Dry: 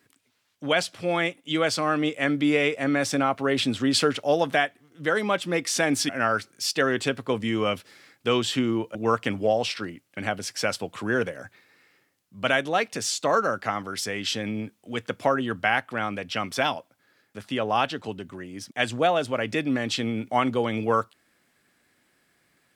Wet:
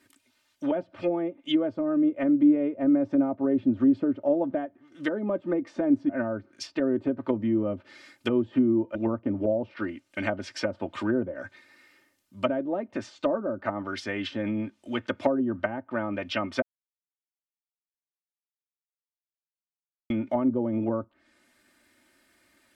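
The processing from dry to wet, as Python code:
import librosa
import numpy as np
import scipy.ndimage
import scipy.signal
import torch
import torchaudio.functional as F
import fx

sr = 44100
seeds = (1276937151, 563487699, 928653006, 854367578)

y = fx.edit(x, sr, fx.silence(start_s=16.62, length_s=3.48), tone=tone)
y = fx.env_lowpass_down(y, sr, base_hz=440.0, full_db=-21.5)
y = y + 0.77 * np.pad(y, (int(3.3 * sr / 1000.0), 0))[:len(y)]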